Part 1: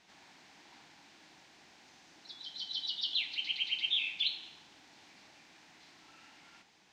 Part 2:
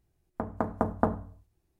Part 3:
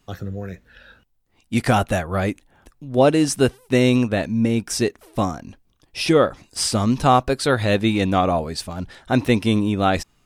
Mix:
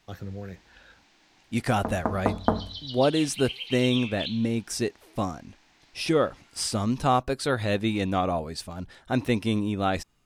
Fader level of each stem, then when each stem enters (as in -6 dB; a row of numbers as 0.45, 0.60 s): -2.0, +2.5, -7.0 dB; 0.00, 1.45, 0.00 s